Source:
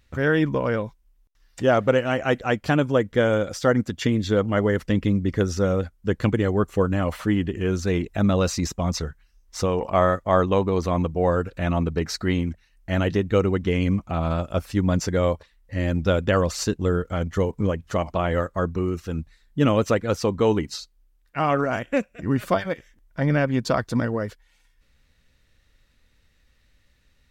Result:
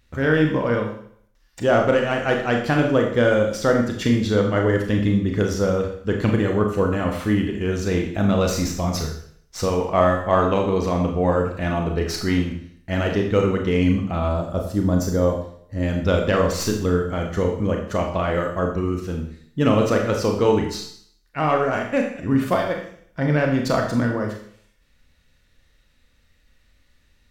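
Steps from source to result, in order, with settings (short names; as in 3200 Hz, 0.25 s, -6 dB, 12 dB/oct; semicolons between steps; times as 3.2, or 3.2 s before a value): tracing distortion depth 0.027 ms; 14.28–15.83 bell 2400 Hz -14 dB 1.2 oct; Schroeder reverb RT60 0.61 s, combs from 26 ms, DRR 1.5 dB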